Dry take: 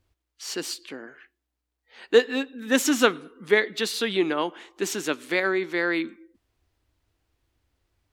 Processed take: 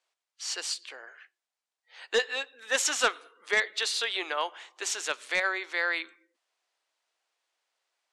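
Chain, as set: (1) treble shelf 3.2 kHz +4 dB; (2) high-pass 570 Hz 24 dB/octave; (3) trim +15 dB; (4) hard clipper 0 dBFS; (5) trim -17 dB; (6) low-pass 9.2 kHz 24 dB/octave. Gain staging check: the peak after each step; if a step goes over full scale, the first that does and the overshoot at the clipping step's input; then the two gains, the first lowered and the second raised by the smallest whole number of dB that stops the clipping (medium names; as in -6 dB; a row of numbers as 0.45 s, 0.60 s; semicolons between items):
-2.0 dBFS, -5.5 dBFS, +9.5 dBFS, 0.0 dBFS, -17.0 dBFS, -15.5 dBFS; step 3, 9.5 dB; step 3 +5 dB, step 5 -7 dB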